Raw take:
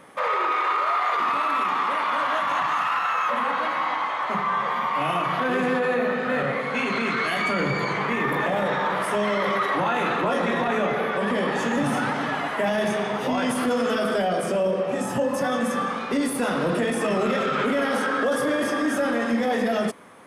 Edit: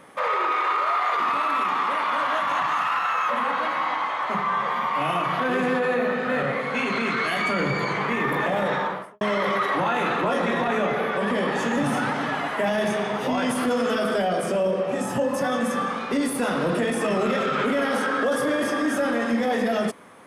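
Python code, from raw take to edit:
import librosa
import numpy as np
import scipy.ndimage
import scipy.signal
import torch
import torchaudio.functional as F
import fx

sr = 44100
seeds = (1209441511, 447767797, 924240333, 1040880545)

y = fx.studio_fade_out(x, sr, start_s=8.75, length_s=0.46)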